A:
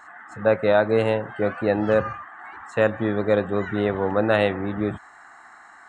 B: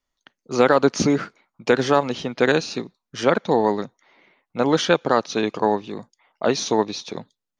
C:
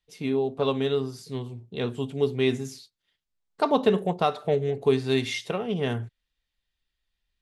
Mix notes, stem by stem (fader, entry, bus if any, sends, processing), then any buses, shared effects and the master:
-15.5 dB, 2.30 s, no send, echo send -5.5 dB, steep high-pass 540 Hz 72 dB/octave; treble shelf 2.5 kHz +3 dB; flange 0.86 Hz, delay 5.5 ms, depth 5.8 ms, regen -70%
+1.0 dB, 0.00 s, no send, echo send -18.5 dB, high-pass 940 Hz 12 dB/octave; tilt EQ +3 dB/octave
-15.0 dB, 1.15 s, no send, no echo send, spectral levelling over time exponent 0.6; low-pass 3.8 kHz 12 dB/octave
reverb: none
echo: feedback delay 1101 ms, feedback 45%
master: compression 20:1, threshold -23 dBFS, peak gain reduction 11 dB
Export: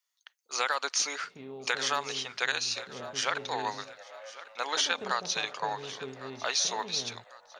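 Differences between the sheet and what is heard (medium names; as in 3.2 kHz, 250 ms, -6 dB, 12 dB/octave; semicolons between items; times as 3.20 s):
stem A -15.5 dB -> -21.5 dB; stem B +1.0 dB -> -5.0 dB; stem C -15.0 dB -> -21.5 dB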